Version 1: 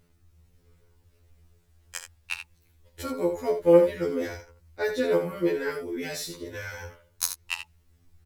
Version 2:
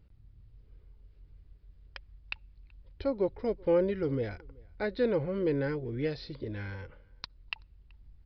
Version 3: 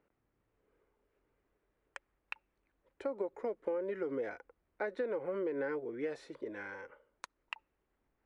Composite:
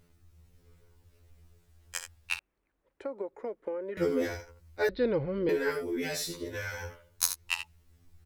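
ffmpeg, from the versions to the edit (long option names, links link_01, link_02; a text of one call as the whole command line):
ffmpeg -i take0.wav -i take1.wav -i take2.wav -filter_complex "[0:a]asplit=3[link_01][link_02][link_03];[link_01]atrim=end=2.392[link_04];[2:a]atrim=start=2.388:end=3.972[link_05];[link_02]atrim=start=3.968:end=4.892[link_06];[1:a]atrim=start=4.888:end=5.492[link_07];[link_03]atrim=start=5.488[link_08];[link_04][link_05]acrossfade=duration=0.004:curve1=hsin:curve2=hsin[link_09];[link_09][link_06]acrossfade=duration=0.004:curve1=hsin:curve2=hsin[link_10];[link_10][link_07]acrossfade=duration=0.004:curve1=hsin:curve2=hsin[link_11];[link_11][link_08]acrossfade=duration=0.004:curve1=hsin:curve2=hsin" out.wav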